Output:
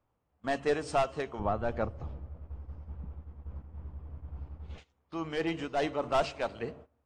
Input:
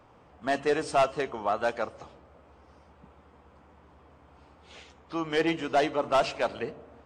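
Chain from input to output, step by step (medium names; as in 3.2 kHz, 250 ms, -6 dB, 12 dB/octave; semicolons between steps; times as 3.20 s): 1.39–4.78 s: RIAA curve playback; gate -46 dBFS, range -19 dB; bass shelf 120 Hz +11.5 dB; random flutter of the level, depth 60%; trim -2.5 dB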